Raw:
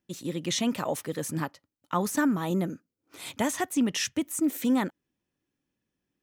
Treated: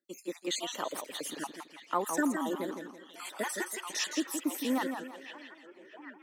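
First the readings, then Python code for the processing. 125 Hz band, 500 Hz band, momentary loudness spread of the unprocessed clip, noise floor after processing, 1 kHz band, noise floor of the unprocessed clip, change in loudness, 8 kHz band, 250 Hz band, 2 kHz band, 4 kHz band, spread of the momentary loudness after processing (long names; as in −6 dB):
−19.5 dB, −4.0 dB, 9 LU, −58 dBFS, −2.5 dB, below −85 dBFS, −6.0 dB, −4.0 dB, −7.5 dB, −2.0 dB, −2.5 dB, 17 LU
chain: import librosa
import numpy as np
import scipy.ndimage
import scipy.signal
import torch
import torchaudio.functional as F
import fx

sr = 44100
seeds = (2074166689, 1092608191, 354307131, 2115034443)

y = fx.spec_dropout(x, sr, seeds[0], share_pct=46)
y = scipy.signal.sosfilt(scipy.signal.butter(4, 280.0, 'highpass', fs=sr, output='sos'), y)
y = fx.echo_stepped(y, sr, ms=634, hz=3100.0, octaves=-0.7, feedback_pct=70, wet_db=-6)
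y = fx.echo_warbled(y, sr, ms=165, feedback_pct=34, rate_hz=2.8, cents=135, wet_db=-7.0)
y = F.gain(torch.from_numpy(y), -2.0).numpy()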